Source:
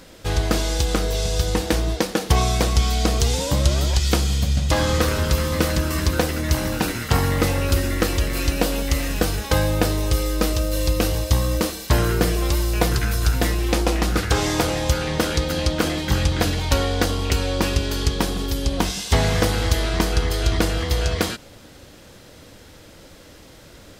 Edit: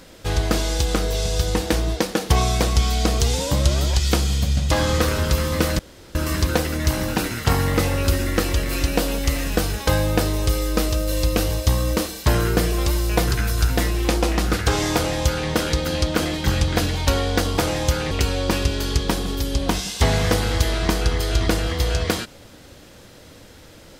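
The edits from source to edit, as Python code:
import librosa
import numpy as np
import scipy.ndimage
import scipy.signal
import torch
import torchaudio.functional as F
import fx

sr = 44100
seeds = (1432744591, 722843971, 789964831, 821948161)

y = fx.edit(x, sr, fx.insert_room_tone(at_s=5.79, length_s=0.36),
    fx.duplicate(start_s=14.59, length_s=0.53, to_s=17.22), tone=tone)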